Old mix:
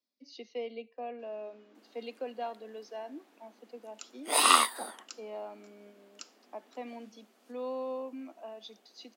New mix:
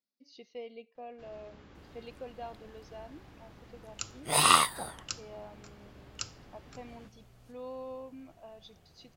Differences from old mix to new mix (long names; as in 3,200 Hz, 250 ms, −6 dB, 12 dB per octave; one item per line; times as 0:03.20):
speech −5.5 dB
first sound +9.0 dB
master: remove Butterworth high-pass 210 Hz 96 dB per octave